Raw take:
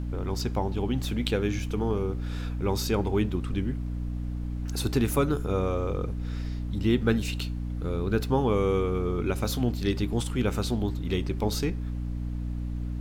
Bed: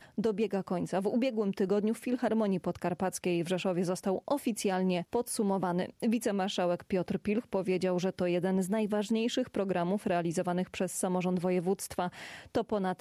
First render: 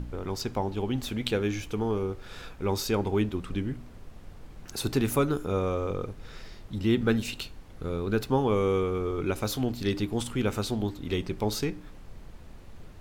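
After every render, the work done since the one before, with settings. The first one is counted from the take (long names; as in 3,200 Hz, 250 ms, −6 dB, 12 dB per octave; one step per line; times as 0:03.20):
hum removal 60 Hz, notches 5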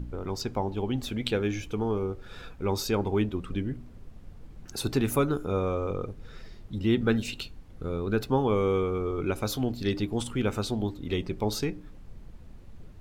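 broadband denoise 7 dB, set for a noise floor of −47 dBFS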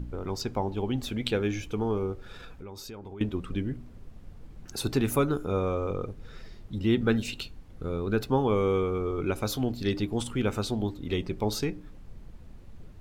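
0:02.32–0:03.21: downward compressor 8 to 1, threshold −39 dBFS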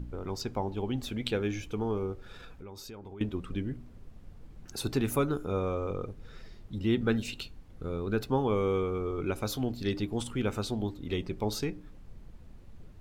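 level −3 dB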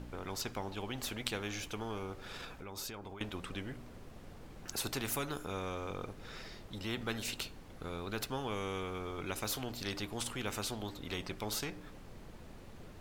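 every bin compressed towards the loudest bin 2 to 1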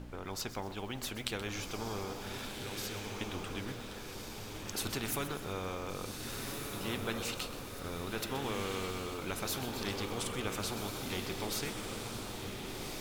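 on a send: feedback delay with all-pass diffusion 1,522 ms, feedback 52%, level −3.5 dB
on the sum: feedback echo at a low word length 127 ms, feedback 55%, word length 8 bits, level −12 dB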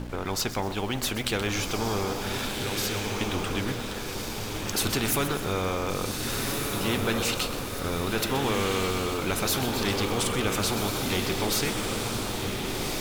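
leveller curve on the samples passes 3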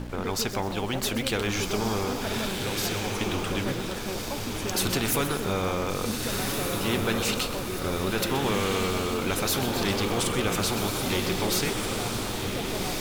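mix in bed −6 dB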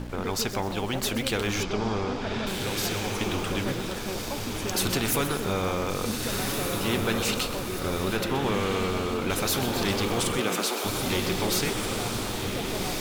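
0:01.63–0:02.47: high-frequency loss of the air 140 metres
0:08.17–0:09.30: high-shelf EQ 4,400 Hz −7.5 dB
0:10.37–0:10.84: high-pass filter 110 Hz → 400 Hz 24 dB per octave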